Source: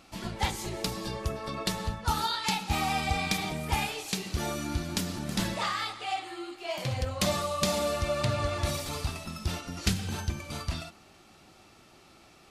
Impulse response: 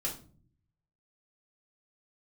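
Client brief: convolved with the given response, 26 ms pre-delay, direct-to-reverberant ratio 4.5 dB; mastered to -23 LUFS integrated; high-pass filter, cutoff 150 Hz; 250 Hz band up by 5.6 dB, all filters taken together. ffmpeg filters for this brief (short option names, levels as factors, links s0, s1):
-filter_complex "[0:a]highpass=150,equalizer=f=250:t=o:g=9,asplit=2[s0][s1];[1:a]atrim=start_sample=2205,adelay=26[s2];[s1][s2]afir=irnorm=-1:irlink=0,volume=0.422[s3];[s0][s3]amix=inputs=2:normalize=0,volume=1.88"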